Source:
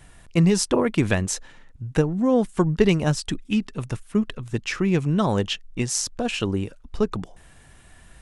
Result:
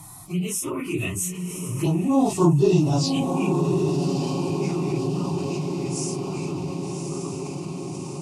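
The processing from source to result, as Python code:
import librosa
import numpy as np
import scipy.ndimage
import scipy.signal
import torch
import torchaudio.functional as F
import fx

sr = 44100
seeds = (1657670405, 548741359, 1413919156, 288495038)

y = fx.phase_scramble(x, sr, seeds[0], window_ms=100)
y = fx.doppler_pass(y, sr, speed_mps=23, closest_m=5.0, pass_at_s=2.41)
y = scipy.signal.sosfilt(scipy.signal.butter(2, 100.0, 'highpass', fs=sr, output='sos'), y)
y = fx.high_shelf(y, sr, hz=9000.0, db=8.5)
y = fx.fixed_phaser(y, sr, hz=330.0, stages=8)
y = fx.env_phaser(y, sr, low_hz=480.0, high_hz=2300.0, full_db=-28.0)
y = fx.peak_eq(y, sr, hz=2600.0, db=9.5, octaves=0.21)
y = fx.echo_diffused(y, sr, ms=1136, feedback_pct=53, wet_db=-8.5)
y = fx.env_flatten(y, sr, amount_pct=50)
y = y * 10.0 ** (5.5 / 20.0)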